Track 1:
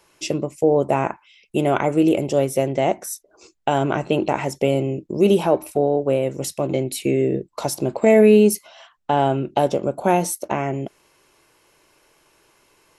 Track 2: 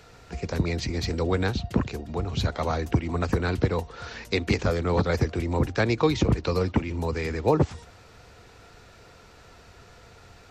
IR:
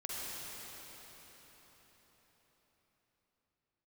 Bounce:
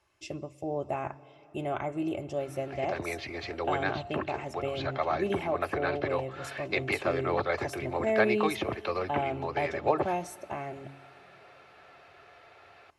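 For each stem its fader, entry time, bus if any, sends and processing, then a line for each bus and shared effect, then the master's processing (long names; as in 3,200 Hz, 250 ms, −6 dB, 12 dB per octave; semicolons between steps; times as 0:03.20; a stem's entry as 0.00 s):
−10.5 dB, 0.00 s, send −21 dB, low-pass filter 3,300 Hz 6 dB per octave; low-shelf EQ 260 Hz −7.5 dB; hum removal 137.6 Hz, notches 2
+1.5 dB, 2.40 s, no send, Chebyshev band-pass filter 470–2,700 Hz, order 2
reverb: on, RT60 5.0 s, pre-delay 42 ms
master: low shelf with overshoot 130 Hz +12.5 dB, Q 1.5; notch comb filter 480 Hz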